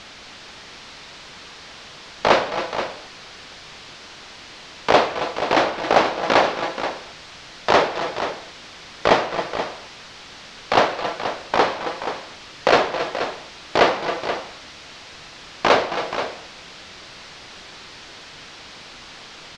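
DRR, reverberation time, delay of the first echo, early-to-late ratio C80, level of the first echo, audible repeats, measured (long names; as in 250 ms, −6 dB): no reverb audible, no reverb audible, 271 ms, no reverb audible, −12.0 dB, 2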